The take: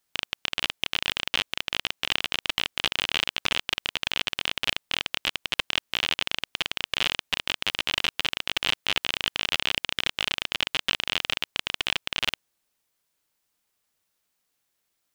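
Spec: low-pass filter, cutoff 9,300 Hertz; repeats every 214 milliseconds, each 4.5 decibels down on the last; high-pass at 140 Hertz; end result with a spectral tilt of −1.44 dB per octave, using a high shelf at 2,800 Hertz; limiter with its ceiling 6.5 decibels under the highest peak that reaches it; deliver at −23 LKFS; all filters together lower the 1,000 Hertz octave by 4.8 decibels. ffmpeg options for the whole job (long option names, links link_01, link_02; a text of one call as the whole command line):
ffmpeg -i in.wav -af "highpass=140,lowpass=9300,equalizer=frequency=1000:width_type=o:gain=-5,highshelf=frequency=2800:gain=-7.5,alimiter=limit=-14.5dB:level=0:latency=1,aecho=1:1:214|428|642|856|1070|1284|1498|1712|1926:0.596|0.357|0.214|0.129|0.0772|0.0463|0.0278|0.0167|0.01,volume=9.5dB" out.wav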